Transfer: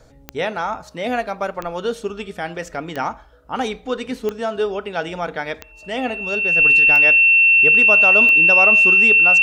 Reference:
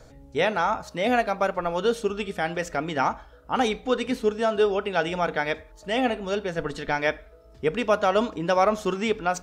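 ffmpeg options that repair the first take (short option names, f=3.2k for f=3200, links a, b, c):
-af "adeclick=t=4,bandreject=f=2.7k:w=30"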